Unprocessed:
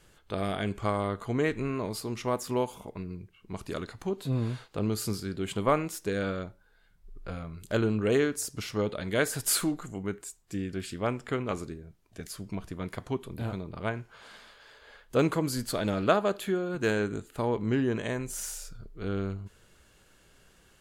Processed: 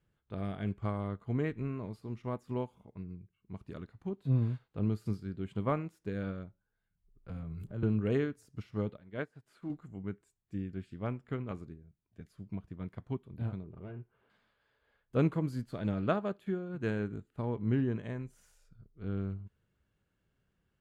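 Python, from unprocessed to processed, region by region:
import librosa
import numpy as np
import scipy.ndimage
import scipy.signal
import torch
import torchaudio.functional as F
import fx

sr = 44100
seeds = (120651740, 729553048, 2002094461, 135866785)

y = fx.chain(x, sr, fx.peak_eq(hz=4000.0, db=-11.0, octaves=2.5),
    fx.transient(attack_db=-7, sustain_db=11),
    fx.band_squash(depth_pct=100), at=(7.29, 7.83))
y = fx.chain(y, sr, fx.lowpass(hz=2300.0, slope=6),
    fx.low_shelf(hz=230.0, db=-6.0),
    fx.upward_expand(threshold_db=-49.0, expansion=1.5), at=(8.97, 9.7))
y = fx.chain(y, sr, fx.clip_hard(threshold_db=-33.0),
    fx.air_absorb(metres=370.0),
    fx.small_body(hz=(390.0, 2800.0), ring_ms=30, db=10), at=(13.63, 14.3))
y = fx.highpass(y, sr, hz=110.0, slope=6)
y = fx.bass_treble(y, sr, bass_db=13, treble_db=-12)
y = fx.upward_expand(y, sr, threshold_db=-44.0, expansion=1.5)
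y = y * 10.0 ** (-7.0 / 20.0)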